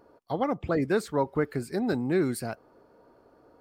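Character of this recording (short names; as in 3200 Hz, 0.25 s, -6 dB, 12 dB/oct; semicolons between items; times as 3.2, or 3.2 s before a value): noise floor -61 dBFS; spectral tilt -4.5 dB/oct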